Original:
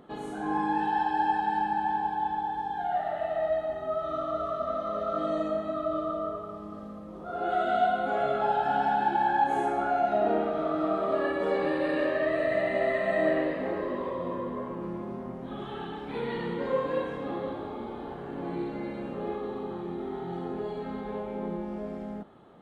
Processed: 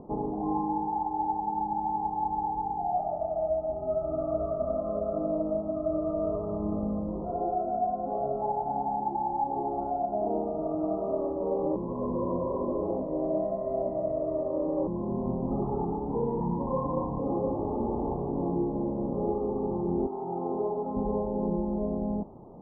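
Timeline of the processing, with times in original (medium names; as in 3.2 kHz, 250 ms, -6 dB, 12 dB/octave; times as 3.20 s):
11.76–14.87 s: reverse
16.40–17.19 s: comb 1.1 ms
20.06–20.95 s: high-pass 1.1 kHz -> 540 Hz 6 dB/octave
whole clip: elliptic low-pass 1 kHz, stop band 40 dB; bass shelf 110 Hz +11.5 dB; gain riding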